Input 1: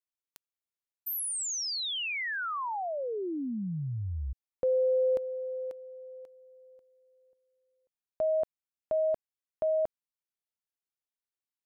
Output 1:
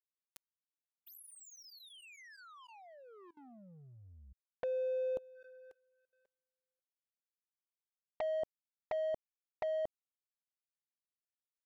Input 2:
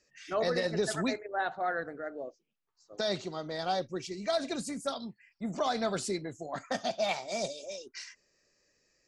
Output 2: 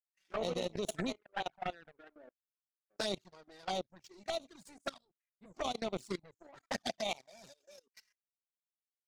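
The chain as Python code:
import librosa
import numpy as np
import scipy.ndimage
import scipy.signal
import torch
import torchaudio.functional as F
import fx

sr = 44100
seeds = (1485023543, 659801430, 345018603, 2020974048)

y = fx.power_curve(x, sr, exponent=2.0)
y = fx.env_flanger(y, sr, rest_ms=5.4, full_db=-32.5)
y = fx.level_steps(y, sr, step_db=21)
y = y * 10.0 ** (7.0 / 20.0)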